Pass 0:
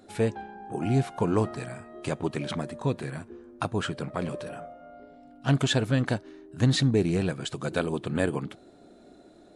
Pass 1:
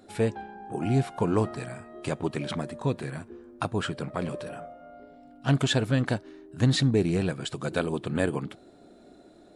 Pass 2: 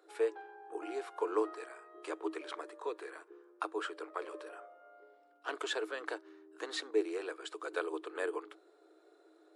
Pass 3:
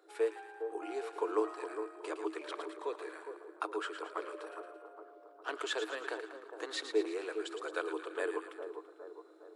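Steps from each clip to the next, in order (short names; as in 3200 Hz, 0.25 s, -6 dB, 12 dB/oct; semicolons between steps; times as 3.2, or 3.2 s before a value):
notch 6300 Hz, Q 22
rippled Chebyshev high-pass 310 Hz, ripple 9 dB; gain -3 dB
split-band echo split 1200 Hz, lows 0.41 s, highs 0.112 s, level -8 dB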